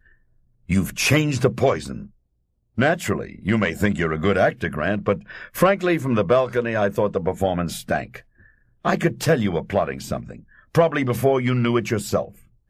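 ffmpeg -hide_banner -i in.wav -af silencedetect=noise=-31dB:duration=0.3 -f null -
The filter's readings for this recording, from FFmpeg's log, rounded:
silence_start: 0.00
silence_end: 0.69 | silence_duration: 0.69
silence_start: 2.03
silence_end: 2.78 | silence_duration: 0.75
silence_start: 8.17
silence_end: 8.85 | silence_duration: 0.68
silence_start: 10.36
silence_end: 10.75 | silence_duration: 0.39
silence_start: 12.28
silence_end: 12.69 | silence_duration: 0.42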